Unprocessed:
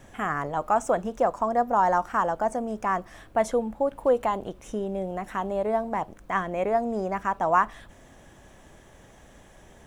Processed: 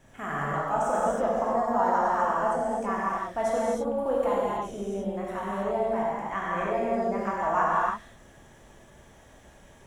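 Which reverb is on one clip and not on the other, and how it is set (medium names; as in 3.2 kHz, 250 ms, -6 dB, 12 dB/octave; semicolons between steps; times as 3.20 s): gated-style reverb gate 350 ms flat, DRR -7 dB; trim -8.5 dB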